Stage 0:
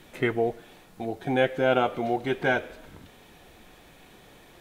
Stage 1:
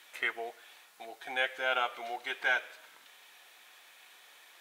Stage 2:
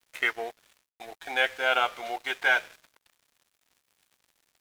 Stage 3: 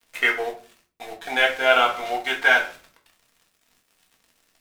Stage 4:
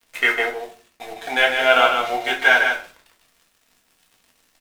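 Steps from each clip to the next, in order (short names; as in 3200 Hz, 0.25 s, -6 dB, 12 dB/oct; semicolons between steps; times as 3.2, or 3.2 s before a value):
HPF 1200 Hz 12 dB/oct
crossover distortion -51 dBFS; gain +6.5 dB
shoebox room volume 220 m³, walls furnished, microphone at 1.7 m; gain +4 dB
echo 0.152 s -5.5 dB; gain +2 dB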